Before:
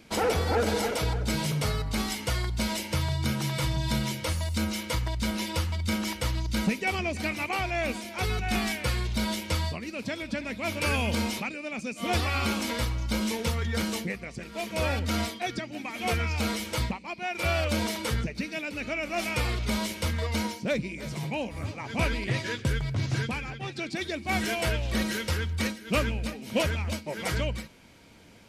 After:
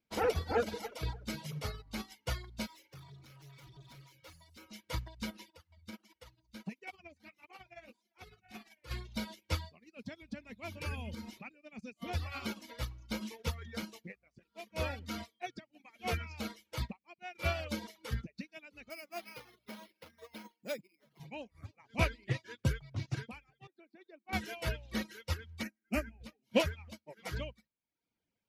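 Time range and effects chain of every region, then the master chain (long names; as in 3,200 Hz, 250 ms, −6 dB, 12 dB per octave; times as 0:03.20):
0:02.66–0:04.71: comb filter 7.1 ms, depth 97% + downward compressor 1.5 to 1, threshold −32 dBFS + gain into a clipping stage and back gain 30.5 dB
0:05.50–0:08.91: low-shelf EQ 81 Hz −7.5 dB + amplitude tremolo 18 Hz, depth 30% + flanger 1.5 Hz, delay 1.9 ms, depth 9.9 ms, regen −27%
0:09.97–0:12.32: low-shelf EQ 200 Hz +8.5 dB + downward compressor 3 to 1, threshold −25 dBFS
0:18.90–0:21.20: hard clipping −24 dBFS + band-pass filter 220–4,800 Hz + bad sample-rate conversion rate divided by 6×, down none, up hold
0:23.67–0:24.33: high-pass filter 260 Hz 24 dB per octave + head-to-tape spacing loss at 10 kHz 35 dB + notch filter 3,200 Hz, Q 16
0:25.63–0:26.21: parametric band 240 Hz +4 dB 0.51 octaves + phaser with its sweep stopped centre 720 Hz, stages 8
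whole clip: reverb reduction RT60 0.98 s; parametric band 8,500 Hz −9 dB 0.32 octaves; expander for the loud parts 2.5 to 1, over −44 dBFS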